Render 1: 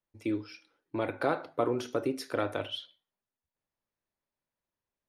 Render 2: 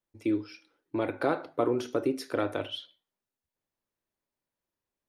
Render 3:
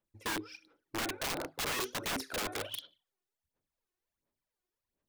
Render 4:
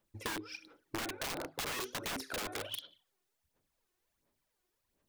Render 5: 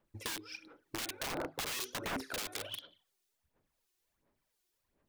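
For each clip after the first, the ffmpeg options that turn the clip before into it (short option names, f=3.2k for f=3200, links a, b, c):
-af "equalizer=f=330:w=1.5:g=4"
-af "aphaser=in_gain=1:out_gain=1:delay=2.8:decay=0.7:speed=1.4:type=sinusoidal,aeval=exprs='(mod(16.8*val(0)+1,2)-1)/16.8':c=same,volume=-5dB"
-af "acompressor=threshold=-45dB:ratio=6,volume=7.5dB"
-filter_complex "[0:a]acrossover=split=2500[a][b];[a]aeval=exprs='val(0)*(1-0.7/2+0.7/2*cos(2*PI*1.4*n/s))':c=same[c];[b]aeval=exprs='val(0)*(1-0.7/2-0.7/2*cos(2*PI*1.4*n/s))':c=same[d];[c][d]amix=inputs=2:normalize=0,volume=3.5dB"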